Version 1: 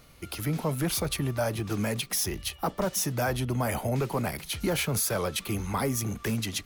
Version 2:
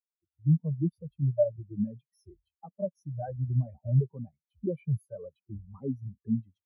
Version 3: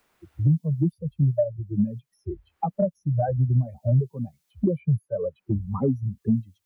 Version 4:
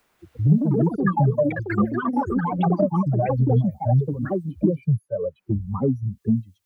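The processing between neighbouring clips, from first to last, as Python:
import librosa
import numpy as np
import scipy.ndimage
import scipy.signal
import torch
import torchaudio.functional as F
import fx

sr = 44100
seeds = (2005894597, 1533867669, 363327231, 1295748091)

y1 = fx.spectral_expand(x, sr, expansion=4.0)
y1 = y1 * 10.0 ** (2.5 / 20.0)
y2 = fx.band_squash(y1, sr, depth_pct=100)
y2 = y2 * 10.0 ** (6.5 / 20.0)
y3 = fx.echo_pitch(y2, sr, ms=192, semitones=6, count=3, db_per_echo=-3.0)
y3 = y3 * 10.0 ** (1.5 / 20.0)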